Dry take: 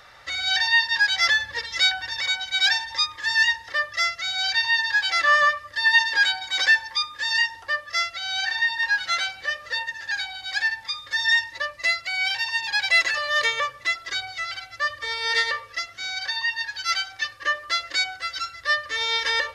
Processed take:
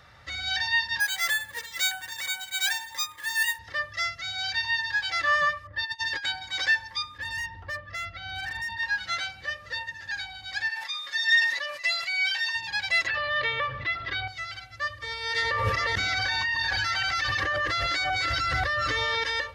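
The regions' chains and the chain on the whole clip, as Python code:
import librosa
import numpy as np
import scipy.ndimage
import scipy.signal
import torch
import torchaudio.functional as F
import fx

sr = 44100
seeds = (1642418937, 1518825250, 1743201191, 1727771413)

y = fx.chain(x, sr, fx.highpass(hz=510.0, slope=6),
    fx.resample_bad(factor=4, down='filtered', up='hold'), at=(1.0, 3.59))
y = fx.chain(y, sr, fx.env_lowpass(base_hz=1100.0, full_db=-18.0),
    fx.over_compress(threshold_db=-23.0, ratio=-0.5),
    fx.notch_comb(f0_hz=230.0), at=(5.67, 6.26))
y = fx.chain(y, sr, fx.lowpass(hz=3000.0, slope=12),
    fx.low_shelf(hz=320.0, db=9.0),
    fx.clip_hard(threshold_db=-24.5), at=(7.18, 8.77))
y = fx.chain(y, sr, fx.highpass(hz=790.0, slope=12),
    fx.comb(ms=7.1, depth=0.89),
    fx.sustainer(db_per_s=57.0), at=(10.69, 12.55))
y = fx.chain(y, sr, fx.lowpass(hz=3700.0, slope=24),
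    fx.env_flatten(amount_pct=50), at=(13.07, 14.28))
y = fx.chain(y, sr, fx.reverse_delay(ms=268, wet_db=-3),
    fx.high_shelf(hz=2100.0, db=-7.5),
    fx.env_flatten(amount_pct=100), at=(15.42, 19.24))
y = scipy.signal.sosfilt(scipy.signal.butter(2, 60.0, 'highpass', fs=sr, output='sos'), y)
y = fx.bass_treble(y, sr, bass_db=14, treble_db=-2)
y = y * librosa.db_to_amplitude(-5.5)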